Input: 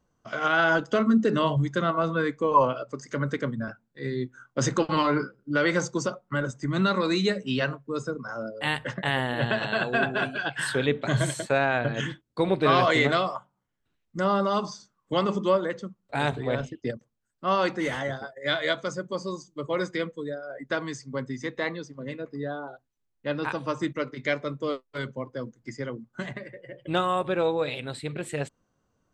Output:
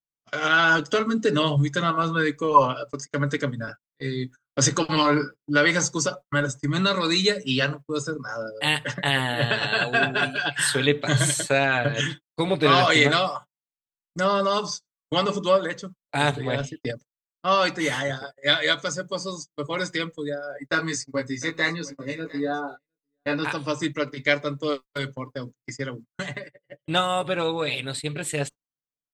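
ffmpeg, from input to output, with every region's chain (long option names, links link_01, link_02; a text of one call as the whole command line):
ffmpeg -i in.wav -filter_complex "[0:a]asettb=1/sr,asplit=3[link_01][link_02][link_03];[link_01]atrim=end=20.714[link_04];[link_02]atrim=start=20.71:end=23.43,asetpts=PTS-STARTPTS,afade=type=in:duration=0.004:curve=qsin,afade=type=out:start_time=2.716:duration=0.004:curve=qsin,asuperstop=centerf=3200:order=4:qfactor=5.2,asplit=2[link_05][link_06];[link_06]adelay=18,volume=-2.5dB[link_07];[link_05][link_07]amix=inputs=2:normalize=0,atrim=end_sample=119952,aecho=1:1:705:0.106,atrim=end_sample=119952[link_08];[link_03]atrim=start=23.426[link_09];[link_04][link_08]acrossfade=duration=0.004:curve1=hsin:curve2=qsin[link_10];[link_10][link_09]acrossfade=duration=0.004:curve1=qsin:curve2=hsin,agate=range=-34dB:threshold=-39dB:ratio=16:detection=peak,highshelf=frequency=2600:gain=11.5,aecho=1:1:6.9:0.5" out.wav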